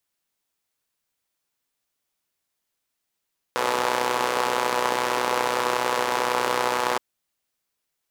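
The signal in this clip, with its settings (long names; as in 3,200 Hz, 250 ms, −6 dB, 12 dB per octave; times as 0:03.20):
pulse-train model of a four-cylinder engine, steady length 3.42 s, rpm 3,700, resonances 520/890 Hz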